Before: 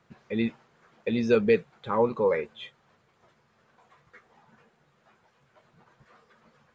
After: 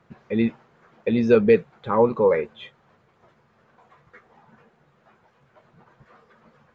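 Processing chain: treble shelf 2.8 kHz -10 dB; trim +6 dB

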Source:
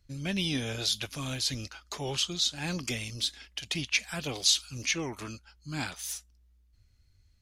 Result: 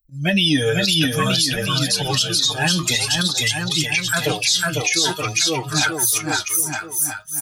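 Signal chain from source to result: expander on every frequency bin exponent 2; slow attack 161 ms; treble shelf 2.5 kHz +9 dB; comb 6.5 ms, depth 51%; bouncing-ball echo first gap 500 ms, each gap 0.85×, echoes 5; flange 0.52 Hz, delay 6.5 ms, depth 6.3 ms, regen +66%; bass shelf 290 Hz -7.5 dB; loudness maximiser +32.5 dB; trim -7 dB

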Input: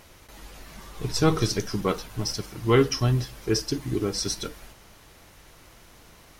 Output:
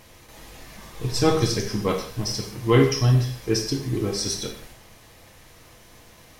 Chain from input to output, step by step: band-stop 1.4 kHz, Q 12; gated-style reverb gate 200 ms falling, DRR 1.5 dB

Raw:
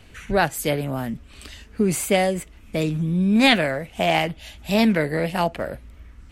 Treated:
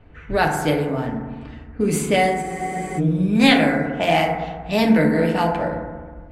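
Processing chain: level-controlled noise filter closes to 1.3 kHz, open at -17.5 dBFS; FDN reverb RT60 1.5 s, low-frequency decay 1.2×, high-frequency decay 0.25×, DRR 0 dB; spectral freeze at 2.43 s, 0.55 s; trim -1 dB

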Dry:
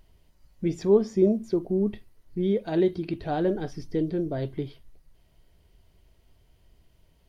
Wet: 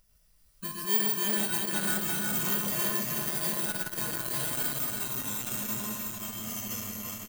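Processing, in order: bit-reversed sample order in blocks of 32 samples; on a send at -2 dB: reverberation RT60 0.35 s, pre-delay 106 ms; on the sum: ever faster or slower copies 304 ms, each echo -3 st, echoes 3; peaking EQ 300 Hz -9.5 dB 0.59 oct; feedback delay 343 ms, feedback 47%, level -4.5 dB; in parallel at 0 dB: compression, threshold -31 dBFS, peak gain reduction 15 dB; on the sum: treble shelf 2.1 kHz +11.5 dB; feedback comb 210 Hz, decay 0.46 s, harmonics odd, mix 80%; transformer saturation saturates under 1.9 kHz; trim -3 dB

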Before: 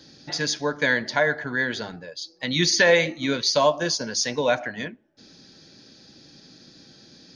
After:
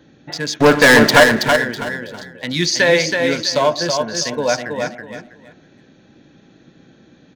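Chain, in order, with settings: local Wiener filter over 9 samples; 0.60–1.24 s: waveshaping leveller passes 5; on a send: feedback delay 325 ms, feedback 24%, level -5 dB; on the sum: trim +3.5 dB

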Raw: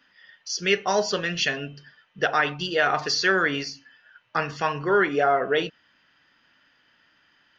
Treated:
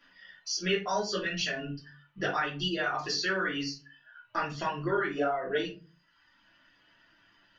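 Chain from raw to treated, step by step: compression 2:1, threshold -34 dBFS, peak gain reduction 10 dB; reverb removal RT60 1.1 s; reverberation RT60 0.35 s, pre-delay 3 ms, DRR -5 dB; trim -5 dB

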